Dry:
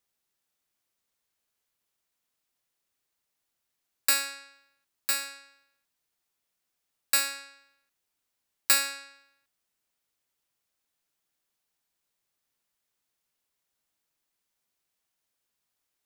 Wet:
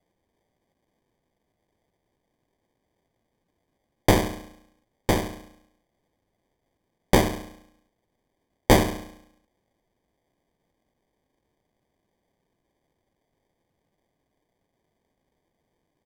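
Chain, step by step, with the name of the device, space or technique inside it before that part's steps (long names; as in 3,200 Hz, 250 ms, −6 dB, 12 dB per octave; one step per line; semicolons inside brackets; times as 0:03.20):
crushed at another speed (tape speed factor 1.25×; decimation without filtering 26×; tape speed factor 0.8×)
level +7.5 dB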